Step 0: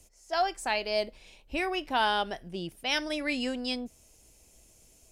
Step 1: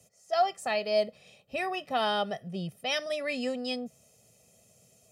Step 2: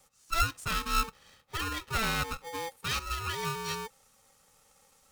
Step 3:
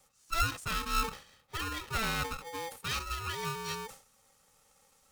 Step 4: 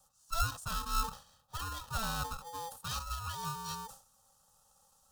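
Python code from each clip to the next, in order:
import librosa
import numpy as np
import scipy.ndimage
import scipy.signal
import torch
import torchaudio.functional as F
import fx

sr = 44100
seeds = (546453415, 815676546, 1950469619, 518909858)

y1 = scipy.signal.sosfilt(scipy.signal.butter(4, 130.0, 'highpass', fs=sr, output='sos'), x)
y1 = fx.low_shelf(y1, sr, hz=450.0, db=10.5)
y1 = y1 + 0.88 * np.pad(y1, (int(1.6 * sr / 1000.0), 0))[:len(y1)]
y1 = y1 * librosa.db_to_amplitude(-5.0)
y2 = y1 * np.sign(np.sin(2.0 * np.pi * 670.0 * np.arange(len(y1)) / sr))
y2 = y2 * librosa.db_to_amplitude(-2.0)
y3 = fx.sustainer(y2, sr, db_per_s=130.0)
y3 = y3 * librosa.db_to_amplitude(-2.5)
y4 = fx.fixed_phaser(y3, sr, hz=890.0, stages=4)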